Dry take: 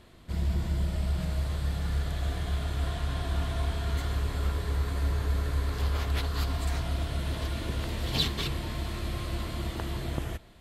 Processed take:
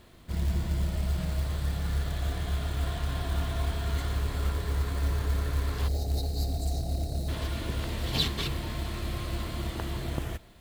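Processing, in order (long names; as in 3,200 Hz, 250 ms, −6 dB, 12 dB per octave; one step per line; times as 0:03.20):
gain on a spectral selection 0:05.88–0:07.28, 840–3,700 Hz −28 dB
log-companded quantiser 6 bits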